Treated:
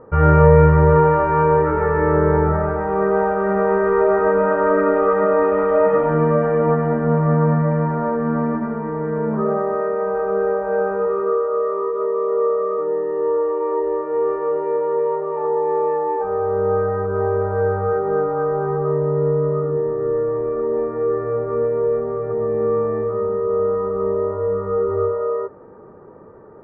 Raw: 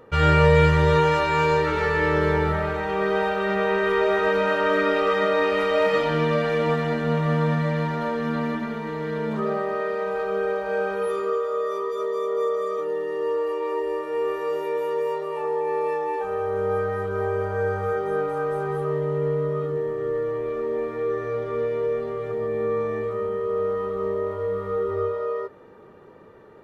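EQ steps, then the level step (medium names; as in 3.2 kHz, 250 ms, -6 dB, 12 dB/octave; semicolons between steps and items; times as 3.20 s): low-pass 1.4 kHz 24 dB/octave; distance through air 130 m; +6.0 dB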